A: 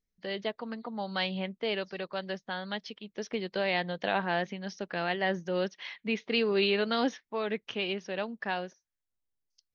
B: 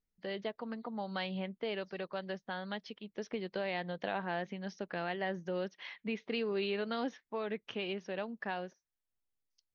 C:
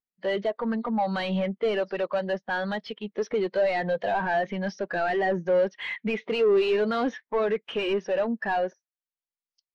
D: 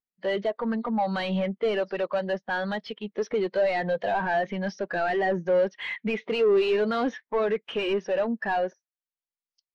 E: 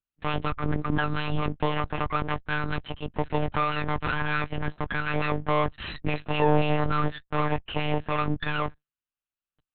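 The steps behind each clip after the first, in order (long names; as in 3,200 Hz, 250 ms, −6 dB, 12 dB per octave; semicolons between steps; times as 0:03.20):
high-shelf EQ 3,100 Hz −7.5 dB; downward compressor 2 to 1, threshold −33 dBFS, peak gain reduction 6 dB; level −2 dB
high-shelf EQ 5,800 Hz +9 dB; mid-hump overdrive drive 27 dB, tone 2,100 Hz, clips at −22 dBFS; every bin expanded away from the loudest bin 1.5 to 1; level +6.5 dB
no processing that can be heard
lower of the sound and its delayed copy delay 0.72 ms; one-pitch LPC vocoder at 8 kHz 150 Hz; level +3.5 dB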